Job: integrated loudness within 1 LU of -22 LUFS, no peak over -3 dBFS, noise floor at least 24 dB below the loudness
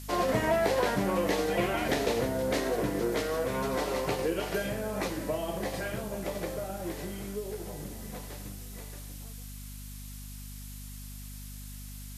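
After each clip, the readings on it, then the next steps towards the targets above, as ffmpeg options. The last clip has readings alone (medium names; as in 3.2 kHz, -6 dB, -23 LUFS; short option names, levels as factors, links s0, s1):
hum 50 Hz; highest harmonic 250 Hz; hum level -41 dBFS; noise floor -43 dBFS; noise floor target -55 dBFS; loudness -31.0 LUFS; peak level -13.0 dBFS; loudness target -22.0 LUFS
-> -af "bandreject=f=50:t=h:w=6,bandreject=f=100:t=h:w=6,bandreject=f=150:t=h:w=6,bandreject=f=200:t=h:w=6,bandreject=f=250:t=h:w=6"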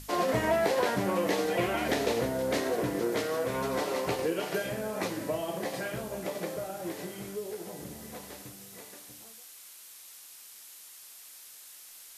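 hum not found; noise floor -50 dBFS; noise floor target -55 dBFS
-> -af "afftdn=nr=6:nf=-50"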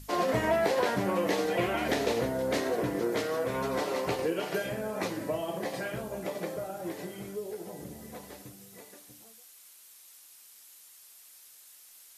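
noise floor -55 dBFS; loudness -31.0 LUFS; peak level -13.5 dBFS; loudness target -22.0 LUFS
-> -af "volume=2.82"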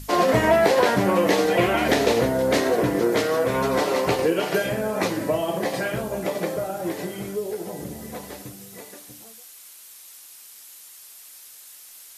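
loudness -22.0 LUFS; peak level -4.5 dBFS; noise floor -46 dBFS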